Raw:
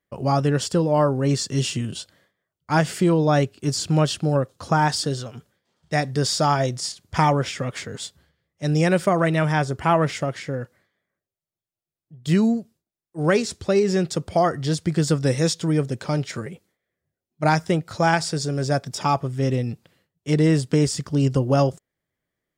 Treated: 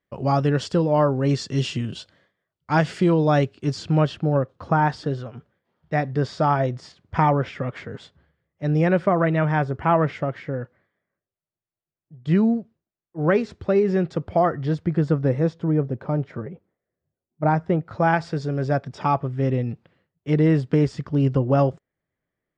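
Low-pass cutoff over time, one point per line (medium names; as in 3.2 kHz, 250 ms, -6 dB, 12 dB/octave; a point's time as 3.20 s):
3.53 s 4.1 kHz
4.23 s 2 kHz
14.53 s 2 kHz
15.63 s 1.1 kHz
17.45 s 1.1 kHz
18.32 s 2.3 kHz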